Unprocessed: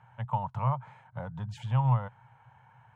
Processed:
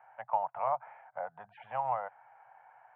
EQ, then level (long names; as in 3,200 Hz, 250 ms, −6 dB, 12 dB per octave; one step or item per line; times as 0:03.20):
high-pass with resonance 720 Hz, resonance Q 4.9
Butterworth low-pass 2,400 Hz 36 dB per octave
parametric band 940 Hz −8.5 dB 0.62 octaves
0.0 dB